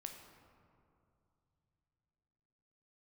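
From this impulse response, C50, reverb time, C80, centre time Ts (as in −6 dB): 5.5 dB, 2.7 s, 7.0 dB, 45 ms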